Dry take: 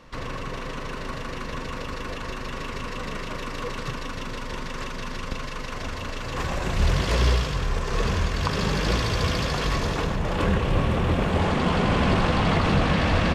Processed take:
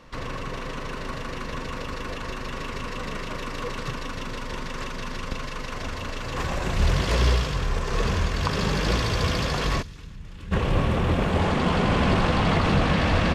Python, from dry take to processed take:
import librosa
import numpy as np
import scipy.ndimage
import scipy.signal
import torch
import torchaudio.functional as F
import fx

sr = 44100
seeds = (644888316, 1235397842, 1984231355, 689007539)

y = fx.tone_stack(x, sr, knobs='6-0-2', at=(9.81, 10.51), fade=0.02)